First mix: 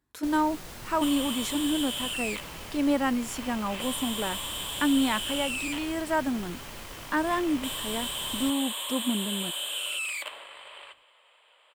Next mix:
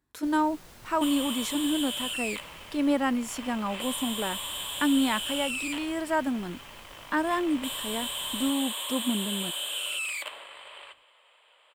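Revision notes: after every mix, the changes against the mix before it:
first sound -8.0 dB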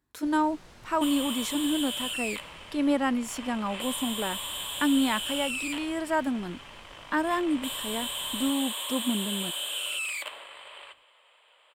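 first sound: add air absorption 56 m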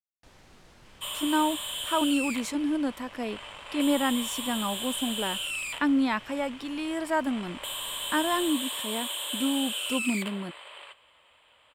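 speech: entry +1.00 s; first sound -3.5 dB

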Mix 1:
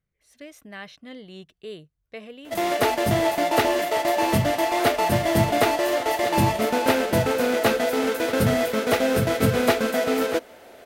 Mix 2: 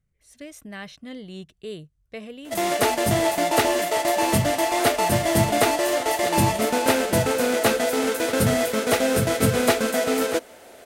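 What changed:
speech: add low shelf 200 Hz +10.5 dB; master: add bell 8600 Hz +8 dB 1.2 oct

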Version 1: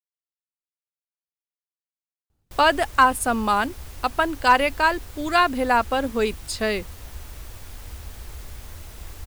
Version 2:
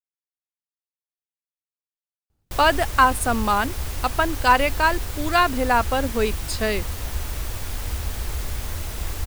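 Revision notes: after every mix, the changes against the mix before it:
background +10.0 dB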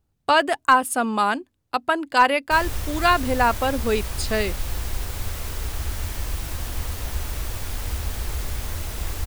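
speech: entry -2.30 s

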